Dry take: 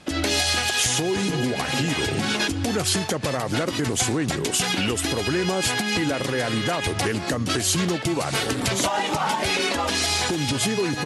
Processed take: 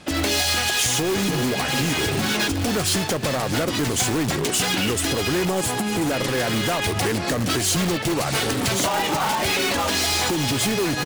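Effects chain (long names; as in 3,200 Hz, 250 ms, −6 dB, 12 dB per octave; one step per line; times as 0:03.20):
0:05.45–0:06.11: flat-topped bell 3,000 Hz −9.5 dB 2.3 octaves
in parallel at −6 dB: wrap-around overflow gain 20 dB
on the sum: repeating echo 1,035 ms, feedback 47%, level −16 dB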